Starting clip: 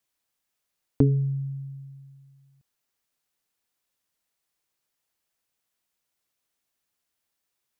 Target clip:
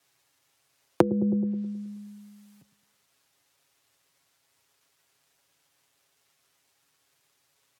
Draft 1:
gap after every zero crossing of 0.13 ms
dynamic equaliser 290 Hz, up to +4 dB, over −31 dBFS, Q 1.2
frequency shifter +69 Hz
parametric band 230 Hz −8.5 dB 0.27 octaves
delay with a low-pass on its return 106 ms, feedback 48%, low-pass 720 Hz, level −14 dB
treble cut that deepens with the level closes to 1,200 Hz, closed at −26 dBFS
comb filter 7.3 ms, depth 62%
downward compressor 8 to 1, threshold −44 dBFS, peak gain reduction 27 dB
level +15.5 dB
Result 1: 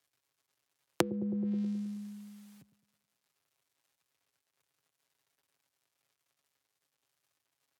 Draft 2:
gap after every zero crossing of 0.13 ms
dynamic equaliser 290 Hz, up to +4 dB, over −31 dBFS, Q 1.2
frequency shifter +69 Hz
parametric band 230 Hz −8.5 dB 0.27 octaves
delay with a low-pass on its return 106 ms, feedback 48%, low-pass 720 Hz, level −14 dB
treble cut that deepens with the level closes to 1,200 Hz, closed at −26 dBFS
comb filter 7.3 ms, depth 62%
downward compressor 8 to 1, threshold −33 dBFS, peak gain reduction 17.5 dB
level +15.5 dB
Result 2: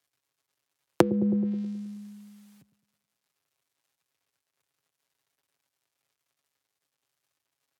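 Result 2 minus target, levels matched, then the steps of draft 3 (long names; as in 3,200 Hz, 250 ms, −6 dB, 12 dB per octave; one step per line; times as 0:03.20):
gap after every zero crossing: distortion +13 dB
gap after every zero crossing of 0.047 ms
dynamic equaliser 290 Hz, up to +4 dB, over −31 dBFS, Q 1.2
frequency shifter +69 Hz
parametric band 230 Hz −8.5 dB 0.27 octaves
delay with a low-pass on its return 106 ms, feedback 48%, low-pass 720 Hz, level −14 dB
treble cut that deepens with the level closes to 1,200 Hz, closed at −26 dBFS
comb filter 7.3 ms, depth 62%
downward compressor 8 to 1, threshold −33 dBFS, peak gain reduction 17.5 dB
level +15.5 dB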